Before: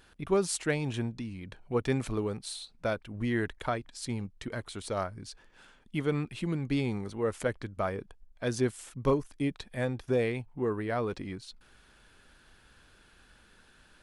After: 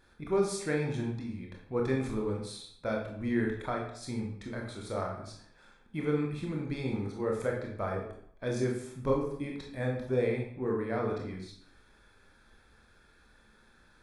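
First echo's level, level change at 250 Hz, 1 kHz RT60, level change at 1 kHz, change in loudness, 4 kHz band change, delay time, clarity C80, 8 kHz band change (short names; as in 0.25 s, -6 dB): none, -0.5 dB, 0.70 s, -1.5 dB, -1.0 dB, -5.0 dB, none, 7.5 dB, -6.0 dB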